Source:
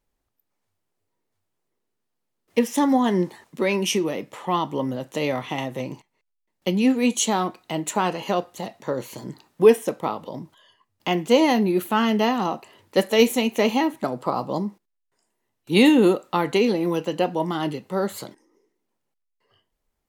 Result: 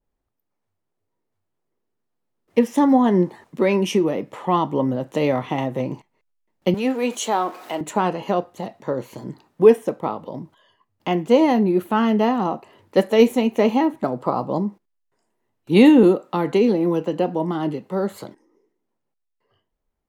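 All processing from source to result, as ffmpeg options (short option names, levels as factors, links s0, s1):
-filter_complex "[0:a]asettb=1/sr,asplit=3[s0][s1][s2];[s0]atrim=end=6.744[s3];[s1]atrim=start=6.74:end=7.81,asetpts=PTS-STARTPTS,afade=t=in:d=0.004:c=qsin,afade=t=out:st=1.066:d=0.004:c=qsin,aeval=exprs='val(0)+0.5*0.0168*sgn(val(0))':c=same,highpass=440,equalizer=f=13000:t=o:w=0.22:g=4[s4];[s2]atrim=start=7.806[s5];[s3][s4]acrossfade=d=0.004:c1=hsin:c2=qsin[s6];[s6][s5]acrossfade=d=0.004:c1=qsin:c2=hsin,asettb=1/sr,asplit=3[s7][s8][s9];[s7]atrim=end=16.034[s10];[s8]atrim=start=16.03:end=18.24,asetpts=PTS-STARTPTS,afade=t=in:d=0.004:c=qsin,afade=t=out:st=2.206:d=0.004:c=qsin,highpass=130,acrossover=split=430|3000[s11][s12][s13];[s12]acompressor=threshold=0.0251:ratio=1.5:attack=3.2:release=140:knee=2.83:detection=peak[s14];[s11][s14][s13]amix=inputs=3:normalize=0[s15];[s9]atrim=start=18.236[s16];[s10][s15]acrossfade=d=0.004:c1=hsin:c2=qsin[s17];[s17][s16]acrossfade=d=0.004:c1=qsin:c2=hsin,highshelf=f=2200:g=-10.5,dynaudnorm=f=350:g=13:m=2.24,adynamicequalizer=threshold=0.0224:dfrequency=1600:dqfactor=0.7:tfrequency=1600:tqfactor=0.7:attack=5:release=100:ratio=0.375:range=2:mode=cutabove:tftype=highshelf"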